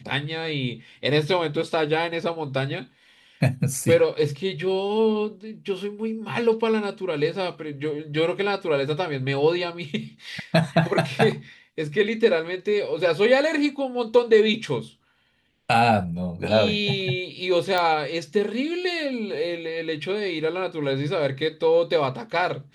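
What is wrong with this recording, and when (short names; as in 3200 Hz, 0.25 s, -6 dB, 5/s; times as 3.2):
17.78 pop -11 dBFS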